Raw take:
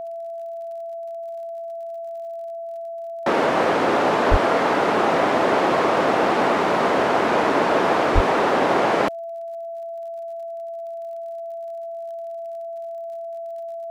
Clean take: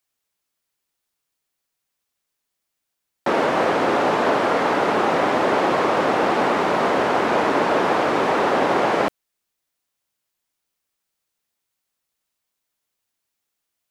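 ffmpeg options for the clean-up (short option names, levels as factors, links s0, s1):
-filter_complex "[0:a]adeclick=t=4,bandreject=f=670:w=30,asplit=3[s0][s1][s2];[s0]afade=t=out:st=4.3:d=0.02[s3];[s1]highpass=f=140:w=0.5412,highpass=f=140:w=1.3066,afade=t=in:st=4.3:d=0.02,afade=t=out:st=4.42:d=0.02[s4];[s2]afade=t=in:st=4.42:d=0.02[s5];[s3][s4][s5]amix=inputs=3:normalize=0,asplit=3[s6][s7][s8];[s6]afade=t=out:st=8.14:d=0.02[s9];[s7]highpass=f=140:w=0.5412,highpass=f=140:w=1.3066,afade=t=in:st=8.14:d=0.02,afade=t=out:st=8.26:d=0.02[s10];[s8]afade=t=in:st=8.26:d=0.02[s11];[s9][s10][s11]amix=inputs=3:normalize=0"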